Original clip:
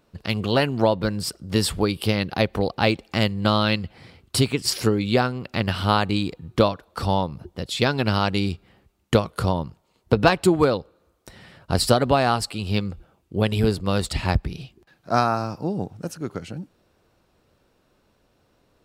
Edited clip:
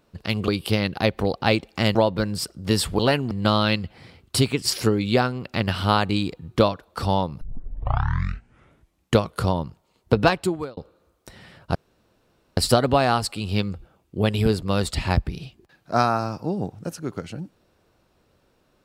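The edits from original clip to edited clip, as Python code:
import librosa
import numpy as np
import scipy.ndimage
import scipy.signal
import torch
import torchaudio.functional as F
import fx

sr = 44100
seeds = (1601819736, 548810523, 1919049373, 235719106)

y = fx.edit(x, sr, fx.swap(start_s=0.48, length_s=0.32, other_s=1.84, other_length_s=1.47),
    fx.tape_start(start_s=7.41, length_s=1.75),
    fx.fade_out_span(start_s=10.19, length_s=0.58),
    fx.insert_room_tone(at_s=11.75, length_s=0.82), tone=tone)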